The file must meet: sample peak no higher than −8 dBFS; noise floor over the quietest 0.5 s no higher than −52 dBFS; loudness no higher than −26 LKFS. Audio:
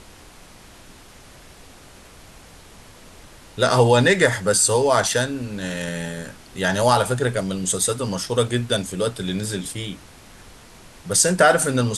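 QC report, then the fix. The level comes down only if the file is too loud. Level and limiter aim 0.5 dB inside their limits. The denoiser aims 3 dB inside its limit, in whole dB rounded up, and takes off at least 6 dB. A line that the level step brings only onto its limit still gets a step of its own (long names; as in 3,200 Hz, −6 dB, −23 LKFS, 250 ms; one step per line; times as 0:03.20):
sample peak −2.5 dBFS: out of spec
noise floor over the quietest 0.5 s −45 dBFS: out of spec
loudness −20.0 LKFS: out of spec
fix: broadband denoise 6 dB, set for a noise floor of −45 dBFS
level −6.5 dB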